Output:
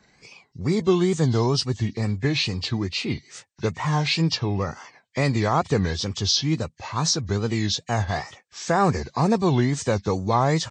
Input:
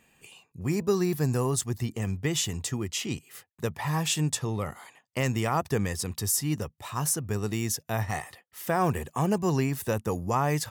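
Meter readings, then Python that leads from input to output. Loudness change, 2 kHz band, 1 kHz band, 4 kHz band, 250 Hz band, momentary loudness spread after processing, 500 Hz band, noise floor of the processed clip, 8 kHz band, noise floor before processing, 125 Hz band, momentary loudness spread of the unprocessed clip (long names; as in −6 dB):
+5.5 dB, +5.5 dB, +5.5 dB, +9.5 dB, +6.0 dB, 9 LU, +5.5 dB, −64 dBFS, −1.0 dB, −71 dBFS, +5.5 dB, 9 LU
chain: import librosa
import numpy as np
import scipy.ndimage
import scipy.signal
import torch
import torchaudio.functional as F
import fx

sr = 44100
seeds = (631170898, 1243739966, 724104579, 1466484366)

y = fx.freq_compress(x, sr, knee_hz=1600.0, ratio=1.5)
y = fx.wow_flutter(y, sr, seeds[0], rate_hz=2.1, depth_cents=140.0)
y = y * 10.0 ** (5.5 / 20.0)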